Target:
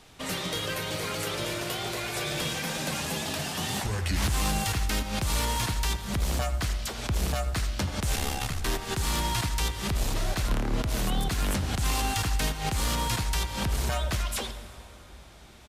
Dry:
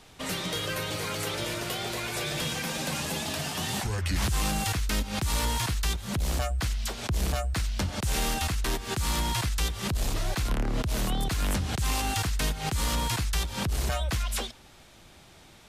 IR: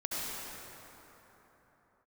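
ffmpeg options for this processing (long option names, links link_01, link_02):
-filter_complex "[0:a]asplit=2[link_01][link_02];[link_02]adelay=80,highpass=300,lowpass=3400,asoftclip=type=hard:threshold=-28dB,volume=-10dB[link_03];[link_01][link_03]amix=inputs=2:normalize=0,asplit=3[link_04][link_05][link_06];[link_04]afade=type=out:start_time=8.15:duration=0.02[link_07];[link_05]aeval=exprs='val(0)*sin(2*PI*34*n/s)':channel_layout=same,afade=type=in:start_time=8.15:duration=0.02,afade=type=out:start_time=8.62:duration=0.02[link_08];[link_06]afade=type=in:start_time=8.62:duration=0.02[link_09];[link_07][link_08][link_09]amix=inputs=3:normalize=0,asplit=2[link_10][link_11];[1:a]atrim=start_sample=2205[link_12];[link_11][link_12]afir=irnorm=-1:irlink=0,volume=-16dB[link_13];[link_10][link_13]amix=inputs=2:normalize=0,aeval=exprs='0.141*(cos(1*acos(clip(val(0)/0.141,-1,1)))-cos(1*PI/2))+0.00708*(cos(3*acos(clip(val(0)/0.141,-1,1)))-cos(3*PI/2))':channel_layout=same"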